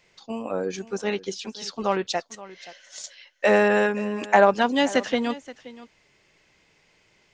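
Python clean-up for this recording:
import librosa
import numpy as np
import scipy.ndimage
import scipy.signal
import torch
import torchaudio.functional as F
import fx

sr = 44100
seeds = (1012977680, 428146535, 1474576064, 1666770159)

y = fx.fix_echo_inverse(x, sr, delay_ms=526, level_db=-18.0)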